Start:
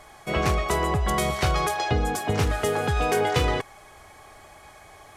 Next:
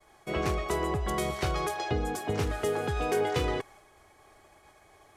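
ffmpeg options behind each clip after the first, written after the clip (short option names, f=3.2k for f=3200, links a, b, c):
-af "agate=range=-33dB:threshold=-44dB:ratio=3:detection=peak,equalizer=f=360:w=1.9:g=6,volume=-7.5dB"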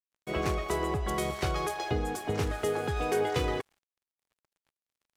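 -af "aeval=exprs='sgn(val(0))*max(abs(val(0))-0.00335,0)':c=same"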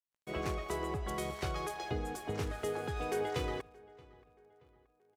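-filter_complex "[0:a]asplit=2[a][b];[b]adelay=627,lowpass=f=2.9k:p=1,volume=-22.5dB,asplit=2[c][d];[d]adelay=627,lowpass=f=2.9k:p=1,volume=0.46,asplit=2[e][f];[f]adelay=627,lowpass=f=2.9k:p=1,volume=0.46[g];[a][c][e][g]amix=inputs=4:normalize=0,volume=-6.5dB"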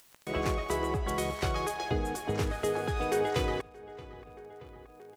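-af "acompressor=mode=upward:threshold=-43dB:ratio=2.5,volume=6dB"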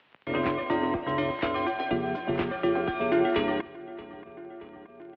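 -af "aecho=1:1:150|300|450:0.106|0.0445|0.0187,highpass=f=200:t=q:w=0.5412,highpass=f=200:t=q:w=1.307,lowpass=f=3.3k:t=q:w=0.5176,lowpass=f=3.3k:t=q:w=0.7071,lowpass=f=3.3k:t=q:w=1.932,afreqshift=-69,volume=5dB"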